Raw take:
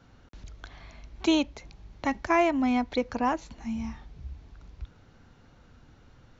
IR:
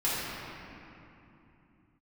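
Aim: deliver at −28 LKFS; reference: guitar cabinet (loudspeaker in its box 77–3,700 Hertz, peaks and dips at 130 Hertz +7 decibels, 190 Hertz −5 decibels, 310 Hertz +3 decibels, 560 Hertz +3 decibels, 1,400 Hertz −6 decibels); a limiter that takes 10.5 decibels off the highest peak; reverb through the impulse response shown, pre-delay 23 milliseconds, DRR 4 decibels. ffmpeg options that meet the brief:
-filter_complex "[0:a]alimiter=limit=-22dB:level=0:latency=1,asplit=2[link_01][link_02];[1:a]atrim=start_sample=2205,adelay=23[link_03];[link_02][link_03]afir=irnorm=-1:irlink=0,volume=-15dB[link_04];[link_01][link_04]amix=inputs=2:normalize=0,highpass=77,equalizer=frequency=130:width_type=q:width=4:gain=7,equalizer=frequency=190:width_type=q:width=4:gain=-5,equalizer=frequency=310:width_type=q:width=4:gain=3,equalizer=frequency=560:width_type=q:width=4:gain=3,equalizer=frequency=1400:width_type=q:width=4:gain=-6,lowpass=frequency=3700:width=0.5412,lowpass=frequency=3700:width=1.3066,volume=3.5dB"

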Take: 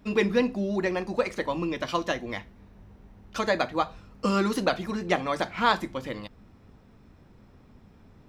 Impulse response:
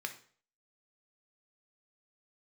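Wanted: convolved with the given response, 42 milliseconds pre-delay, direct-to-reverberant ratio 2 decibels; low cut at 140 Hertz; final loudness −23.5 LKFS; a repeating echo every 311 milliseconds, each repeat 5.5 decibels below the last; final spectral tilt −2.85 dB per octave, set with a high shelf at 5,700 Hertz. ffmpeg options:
-filter_complex "[0:a]highpass=140,highshelf=frequency=5700:gain=5.5,aecho=1:1:311|622|933|1244|1555|1866|2177:0.531|0.281|0.149|0.079|0.0419|0.0222|0.0118,asplit=2[link_01][link_02];[1:a]atrim=start_sample=2205,adelay=42[link_03];[link_02][link_03]afir=irnorm=-1:irlink=0,volume=-3dB[link_04];[link_01][link_04]amix=inputs=2:normalize=0,volume=2dB"

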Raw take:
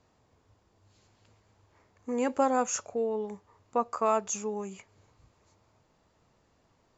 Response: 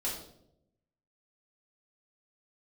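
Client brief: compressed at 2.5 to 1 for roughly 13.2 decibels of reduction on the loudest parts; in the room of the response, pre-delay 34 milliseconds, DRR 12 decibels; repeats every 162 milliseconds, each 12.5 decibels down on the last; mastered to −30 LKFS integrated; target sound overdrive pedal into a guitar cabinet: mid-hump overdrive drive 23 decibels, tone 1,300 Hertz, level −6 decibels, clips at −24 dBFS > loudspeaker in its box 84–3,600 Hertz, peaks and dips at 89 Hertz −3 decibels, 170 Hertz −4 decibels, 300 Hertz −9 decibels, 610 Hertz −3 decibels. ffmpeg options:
-filter_complex "[0:a]acompressor=threshold=-41dB:ratio=2.5,aecho=1:1:162|324|486:0.237|0.0569|0.0137,asplit=2[link_01][link_02];[1:a]atrim=start_sample=2205,adelay=34[link_03];[link_02][link_03]afir=irnorm=-1:irlink=0,volume=-15.5dB[link_04];[link_01][link_04]amix=inputs=2:normalize=0,asplit=2[link_05][link_06];[link_06]highpass=frequency=720:poles=1,volume=23dB,asoftclip=type=tanh:threshold=-24dB[link_07];[link_05][link_07]amix=inputs=2:normalize=0,lowpass=frequency=1300:poles=1,volume=-6dB,highpass=84,equalizer=frequency=89:width_type=q:width=4:gain=-3,equalizer=frequency=170:width_type=q:width=4:gain=-4,equalizer=frequency=300:width_type=q:width=4:gain=-9,equalizer=frequency=610:width_type=q:width=4:gain=-3,lowpass=frequency=3600:width=0.5412,lowpass=frequency=3600:width=1.3066,volume=7dB"

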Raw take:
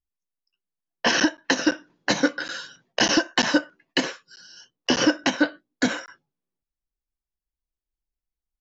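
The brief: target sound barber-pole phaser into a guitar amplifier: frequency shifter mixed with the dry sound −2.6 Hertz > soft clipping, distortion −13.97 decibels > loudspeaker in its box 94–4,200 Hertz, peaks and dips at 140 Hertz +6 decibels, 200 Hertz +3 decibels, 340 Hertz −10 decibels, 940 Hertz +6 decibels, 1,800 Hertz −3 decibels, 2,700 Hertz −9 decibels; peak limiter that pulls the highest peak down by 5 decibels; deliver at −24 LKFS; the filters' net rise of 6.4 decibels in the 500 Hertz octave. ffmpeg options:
ffmpeg -i in.wav -filter_complex "[0:a]equalizer=frequency=500:width_type=o:gain=8.5,alimiter=limit=-8dB:level=0:latency=1,asplit=2[link_01][link_02];[link_02]afreqshift=-2.6[link_03];[link_01][link_03]amix=inputs=2:normalize=1,asoftclip=threshold=-16dB,highpass=94,equalizer=frequency=140:width_type=q:width=4:gain=6,equalizer=frequency=200:width_type=q:width=4:gain=3,equalizer=frequency=340:width_type=q:width=4:gain=-10,equalizer=frequency=940:width_type=q:width=4:gain=6,equalizer=frequency=1800:width_type=q:width=4:gain=-3,equalizer=frequency=2700:width_type=q:width=4:gain=-9,lowpass=frequency=4200:width=0.5412,lowpass=frequency=4200:width=1.3066,volume=6dB" out.wav

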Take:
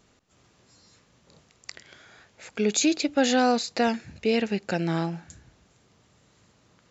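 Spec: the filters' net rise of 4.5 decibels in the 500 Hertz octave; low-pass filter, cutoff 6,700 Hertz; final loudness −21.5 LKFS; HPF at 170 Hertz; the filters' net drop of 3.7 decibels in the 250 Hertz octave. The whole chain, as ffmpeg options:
ffmpeg -i in.wav -af "highpass=170,lowpass=6700,equalizer=frequency=250:width_type=o:gain=-5.5,equalizer=frequency=500:width_type=o:gain=6.5,volume=2.5dB" out.wav

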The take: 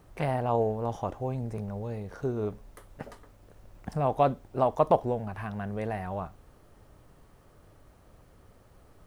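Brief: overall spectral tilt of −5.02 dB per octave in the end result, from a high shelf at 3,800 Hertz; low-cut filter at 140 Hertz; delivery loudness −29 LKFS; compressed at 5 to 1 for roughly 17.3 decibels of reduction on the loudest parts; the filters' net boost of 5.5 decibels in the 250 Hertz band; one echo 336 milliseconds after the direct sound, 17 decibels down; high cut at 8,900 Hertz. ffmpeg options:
ffmpeg -i in.wav -af "highpass=140,lowpass=8900,equalizer=frequency=250:width_type=o:gain=7.5,highshelf=frequency=3800:gain=6.5,acompressor=threshold=-36dB:ratio=5,aecho=1:1:336:0.141,volume=12dB" out.wav

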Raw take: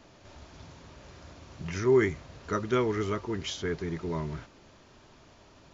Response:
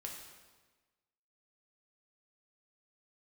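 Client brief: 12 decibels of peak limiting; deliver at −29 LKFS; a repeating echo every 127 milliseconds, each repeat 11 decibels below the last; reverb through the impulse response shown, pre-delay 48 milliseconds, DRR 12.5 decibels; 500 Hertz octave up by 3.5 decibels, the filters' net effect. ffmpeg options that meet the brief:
-filter_complex "[0:a]equalizer=frequency=500:width_type=o:gain=5,alimiter=limit=-22.5dB:level=0:latency=1,aecho=1:1:127|254|381:0.282|0.0789|0.0221,asplit=2[link_01][link_02];[1:a]atrim=start_sample=2205,adelay=48[link_03];[link_02][link_03]afir=irnorm=-1:irlink=0,volume=-10dB[link_04];[link_01][link_04]amix=inputs=2:normalize=0,volume=3dB"

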